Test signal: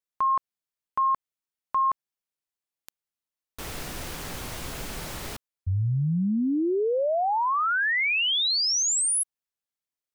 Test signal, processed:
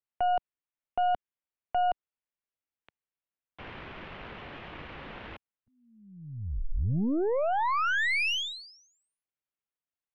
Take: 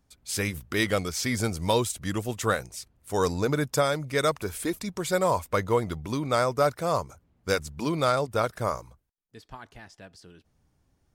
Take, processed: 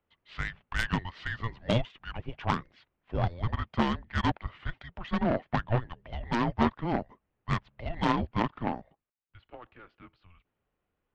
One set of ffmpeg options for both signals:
ffmpeg -i in.wav -af "highpass=frequency=92:width=0.5412,highpass=frequency=92:width=1.3066,highpass=frequency=310:width_type=q:width=0.5412,highpass=frequency=310:width_type=q:width=1.307,lowpass=frequency=3400:width_type=q:width=0.5176,lowpass=frequency=3400:width_type=q:width=0.7071,lowpass=frequency=3400:width_type=q:width=1.932,afreqshift=-350,aeval=exprs='0.282*(cos(1*acos(clip(val(0)/0.282,-1,1)))-cos(1*PI/2))+0.126*(cos(4*acos(clip(val(0)/0.282,-1,1)))-cos(4*PI/2))+0.0891*(cos(6*acos(clip(val(0)/0.282,-1,1)))-cos(6*PI/2))':channel_layout=same,volume=-3dB" out.wav

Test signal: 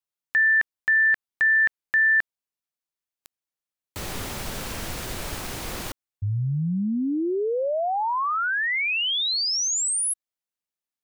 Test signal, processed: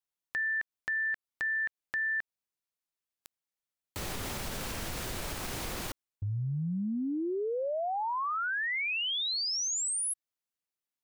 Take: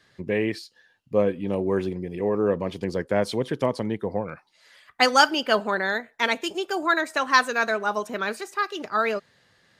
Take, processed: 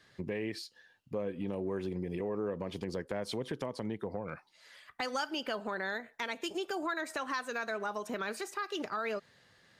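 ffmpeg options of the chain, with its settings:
ffmpeg -i in.wav -af "acompressor=threshold=-28dB:ratio=5:attack=1.7:release=142:knee=1:detection=rms,volume=-2.5dB" out.wav

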